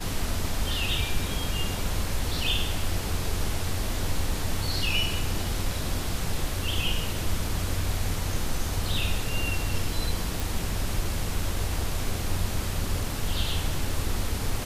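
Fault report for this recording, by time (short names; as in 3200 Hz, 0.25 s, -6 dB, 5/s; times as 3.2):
10.4 pop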